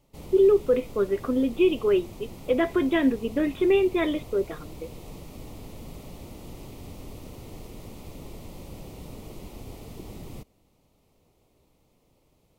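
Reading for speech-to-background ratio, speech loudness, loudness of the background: 19.5 dB, -24.0 LUFS, -43.5 LUFS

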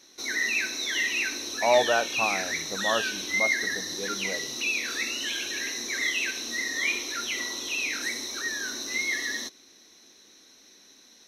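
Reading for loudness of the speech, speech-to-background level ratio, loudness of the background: -29.0 LUFS, -1.5 dB, -27.5 LUFS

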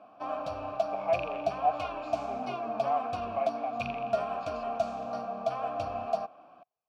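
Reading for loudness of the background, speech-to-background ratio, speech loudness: -34.0 LUFS, -0.5 dB, -34.5 LUFS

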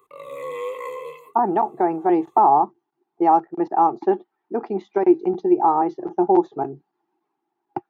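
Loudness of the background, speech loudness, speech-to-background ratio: -32.5 LUFS, -20.5 LUFS, 12.0 dB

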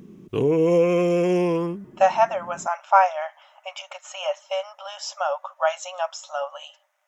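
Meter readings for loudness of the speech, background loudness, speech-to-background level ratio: -24.5 LUFS, -21.0 LUFS, -3.5 dB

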